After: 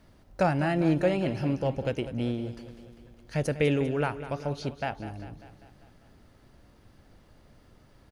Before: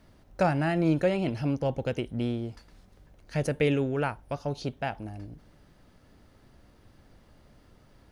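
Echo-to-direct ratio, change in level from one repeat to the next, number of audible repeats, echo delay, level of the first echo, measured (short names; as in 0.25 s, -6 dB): -11.5 dB, -4.5 dB, 5, 0.198 s, -13.5 dB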